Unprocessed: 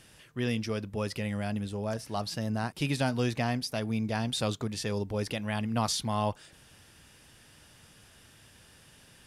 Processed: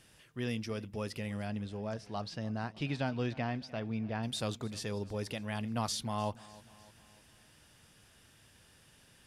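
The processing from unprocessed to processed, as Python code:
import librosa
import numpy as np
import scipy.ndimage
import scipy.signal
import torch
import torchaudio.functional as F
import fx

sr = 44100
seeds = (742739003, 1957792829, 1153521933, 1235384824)

y = fx.lowpass(x, sr, hz=fx.line((1.45, 6600.0), (4.22, 2600.0)), slope=12, at=(1.45, 4.22), fade=0.02)
y = fx.echo_feedback(y, sr, ms=301, feedback_pct=52, wet_db=-20.5)
y = y * librosa.db_to_amplitude(-5.5)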